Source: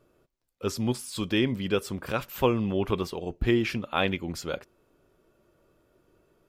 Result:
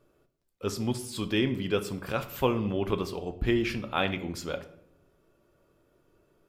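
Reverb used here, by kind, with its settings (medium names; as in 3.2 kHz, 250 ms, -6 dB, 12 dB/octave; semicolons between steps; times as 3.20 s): simulated room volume 130 m³, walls mixed, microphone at 0.31 m; trim -2 dB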